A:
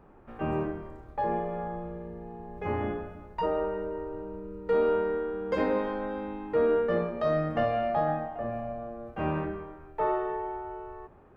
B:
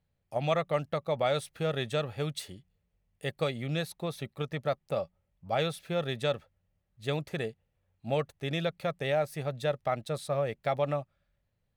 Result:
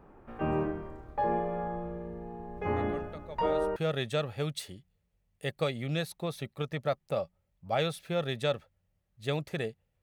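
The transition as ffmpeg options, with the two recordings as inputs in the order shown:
ffmpeg -i cue0.wav -i cue1.wav -filter_complex "[1:a]asplit=2[link_01][link_02];[0:a]apad=whole_dur=10.02,atrim=end=10.02,atrim=end=3.762[link_03];[link_02]atrim=start=1.558:end=7.82[link_04];[link_01]atrim=start=0.56:end=1.56,asetpts=PTS-STARTPTS,volume=-14dB,afade=type=in:duration=0.004:curve=hsin,afade=type=out:start_time=0.996:duration=0.004:curve=hsin,adelay=2760[link_05];[link_03][link_04]acrossfade=duration=0.004:curve1=hsin:curve2=hsin[link_06];[link_06][link_05]amix=inputs=2:normalize=0" out.wav

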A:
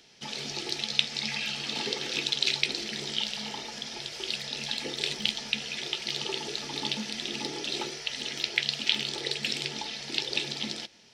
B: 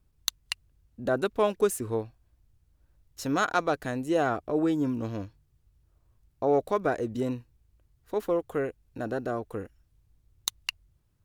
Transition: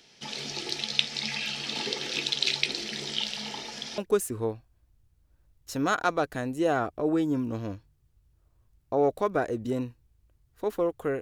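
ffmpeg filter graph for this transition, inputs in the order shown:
ffmpeg -i cue0.wav -i cue1.wav -filter_complex "[0:a]apad=whole_dur=11.21,atrim=end=11.21,atrim=end=3.982[link_01];[1:a]atrim=start=1.478:end=8.71[link_02];[link_01][link_02]acrossfade=duration=0.004:curve1=hsin:curve2=hsin" out.wav

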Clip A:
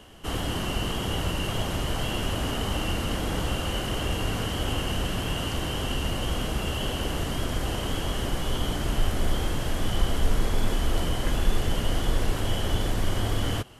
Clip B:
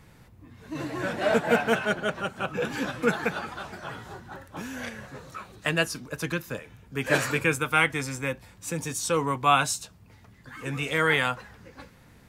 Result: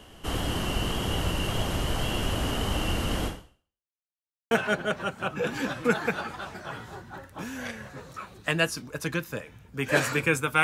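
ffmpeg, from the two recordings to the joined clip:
ffmpeg -i cue0.wav -i cue1.wav -filter_complex "[0:a]apad=whole_dur=10.63,atrim=end=10.63,asplit=2[link_01][link_02];[link_01]atrim=end=3.98,asetpts=PTS-STARTPTS,afade=type=out:start_time=3.26:duration=0.72:curve=exp[link_03];[link_02]atrim=start=3.98:end=4.51,asetpts=PTS-STARTPTS,volume=0[link_04];[1:a]atrim=start=1.69:end=7.81,asetpts=PTS-STARTPTS,afade=type=in:duration=0.004:curve=hsin[link_05];[link_03][link_04][link_05]concat=n=3:v=0:a=1" out.wav

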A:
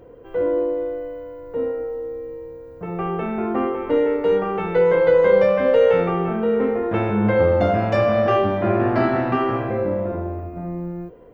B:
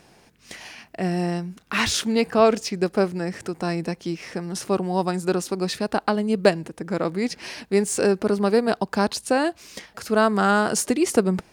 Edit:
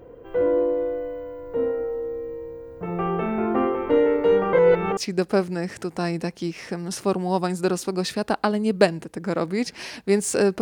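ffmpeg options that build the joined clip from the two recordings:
ffmpeg -i cue0.wav -i cue1.wav -filter_complex "[0:a]apad=whole_dur=10.61,atrim=end=10.61,asplit=2[link_01][link_02];[link_01]atrim=end=4.532[link_03];[link_02]atrim=start=4.528:end=4.972,asetpts=PTS-STARTPTS,areverse[link_04];[1:a]atrim=start=2.608:end=8.25[link_05];[link_03][link_04]acrossfade=duration=0.004:curve1=hsin:curve2=hsin[link_06];[link_06][link_05]acrossfade=duration=0.004:curve1=hsin:curve2=hsin" out.wav

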